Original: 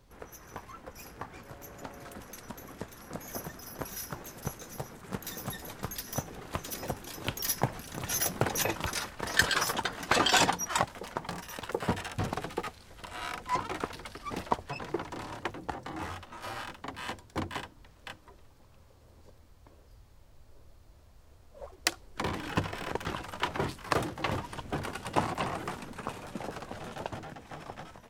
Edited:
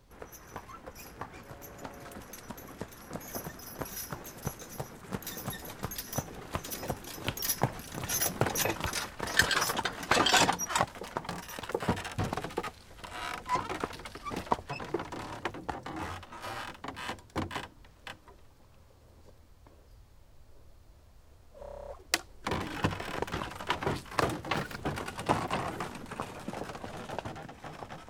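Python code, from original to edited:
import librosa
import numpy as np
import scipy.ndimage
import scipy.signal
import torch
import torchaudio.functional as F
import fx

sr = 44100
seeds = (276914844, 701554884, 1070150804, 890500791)

y = fx.edit(x, sr, fx.stutter(start_s=21.6, slice_s=0.03, count=10),
    fx.speed_span(start_s=24.27, length_s=0.41, speed=1.53), tone=tone)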